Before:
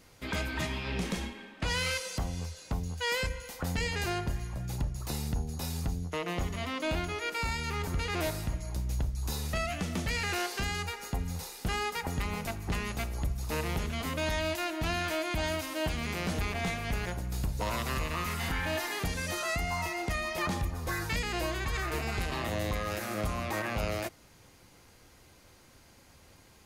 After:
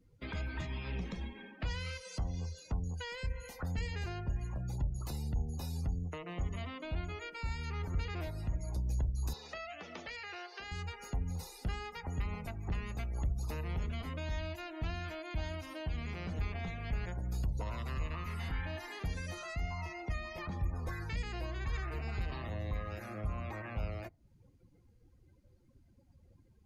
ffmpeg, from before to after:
-filter_complex "[0:a]asettb=1/sr,asplit=3[s0][s1][s2];[s0]atrim=end=9.334[s3];[s1]atrim=start=9.33:end=10.71,asetpts=PTS-STARTPTS,afade=t=in:d=0.004:c=qsin,afade=t=out:st=1.376:d=0.004:c=qsin,acrossover=split=330 6900:gain=0.0631 1 0.158[s4][s5][s6];[s4][s5][s6]amix=inputs=3:normalize=0[s7];[s2]atrim=start=10.706[s8];[s3][s7]acrossfade=d=0.004:c1=hsin:c2=qsin[s9];[s9][s8]acrossfade=d=0.004:c1=qsin:c2=hsin,acrossover=split=130[s10][s11];[s11]acompressor=threshold=0.00794:ratio=4[s12];[s10][s12]amix=inputs=2:normalize=0,afftdn=nr=25:nf=-51,volume=0.891"

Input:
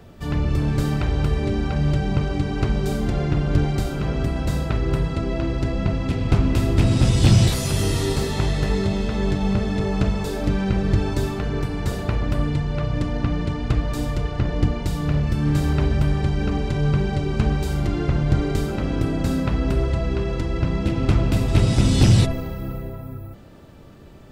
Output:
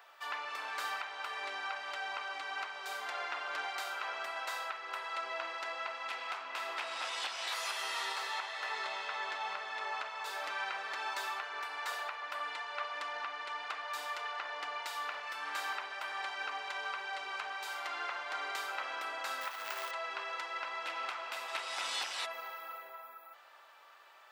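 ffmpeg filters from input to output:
-filter_complex "[0:a]asettb=1/sr,asplit=3[s0][s1][s2];[s0]atrim=end=6.434[s3];[s1]atrim=start=6.43:end=10.26,asetpts=PTS-STARTPTS,afade=t=in:d=0.004:c=qsin,afade=t=out:st=3.826:d=0.004:c=qsin,highshelf=f=7300:g=-8[s4];[s2]atrim=start=10.256[s5];[s3][s4]acrossfade=d=0.004:c1=hsin:c2=qsin[s6];[s6][s5]acrossfade=d=0.004:c1=qsin:c2=hsin,asettb=1/sr,asplit=3[s7][s8][s9];[s7]atrim=end=19.414[s10];[s8]atrim=start=19.41:end=19.91,asetpts=PTS-STARTPTS,afade=t=in:d=0.004:c=qsin,afade=t=out:st=0.496:d=0.004:c=qsin,acrusher=bits=4:mode=log:mix=0:aa=0.000001[s11];[s9]atrim=start=19.906[s12];[s10][s11]acrossfade=d=0.004:c1=hsin:c2=qsin[s13];[s13][s12]acrossfade=d=0.004:c1=qsin:c2=hsin,highpass=f=930:w=0.5412,highpass=f=930:w=1.3066,equalizer=f=9300:w=0.37:g=-11,alimiter=level_in=1.41:limit=0.0631:level=0:latency=1:release=435,volume=0.708,volume=1.19"

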